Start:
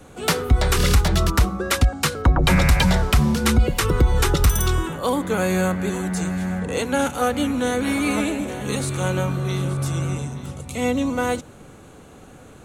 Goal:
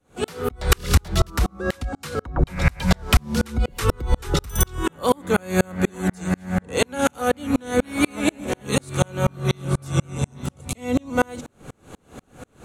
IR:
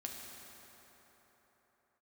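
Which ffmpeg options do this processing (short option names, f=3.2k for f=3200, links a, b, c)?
-filter_complex "[0:a]asplit=2[a][b];[1:a]atrim=start_sample=2205,atrim=end_sample=3087[c];[b][c]afir=irnorm=-1:irlink=0,volume=-10dB[d];[a][d]amix=inputs=2:normalize=0,acompressor=threshold=-17dB:ratio=4,aeval=exprs='val(0)*pow(10,-38*if(lt(mod(-4.1*n/s,1),2*abs(-4.1)/1000),1-mod(-4.1*n/s,1)/(2*abs(-4.1)/1000),(mod(-4.1*n/s,1)-2*abs(-4.1)/1000)/(1-2*abs(-4.1)/1000))/20)':c=same,volume=8.5dB"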